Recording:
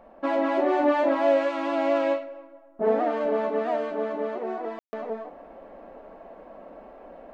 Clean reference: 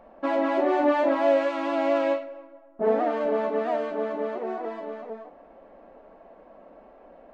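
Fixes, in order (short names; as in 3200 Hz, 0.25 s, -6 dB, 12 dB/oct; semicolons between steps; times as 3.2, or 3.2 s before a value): room tone fill 4.79–4.93; gain 0 dB, from 4.8 s -5 dB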